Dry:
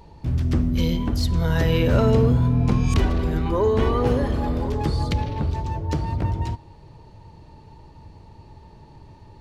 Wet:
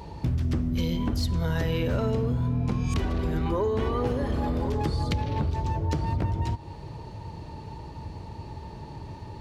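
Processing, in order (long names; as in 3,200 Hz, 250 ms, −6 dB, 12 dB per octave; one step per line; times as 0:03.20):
high-pass filter 45 Hz
downward compressor 6 to 1, threshold −31 dBFS, peak gain reduction 16.5 dB
level +7 dB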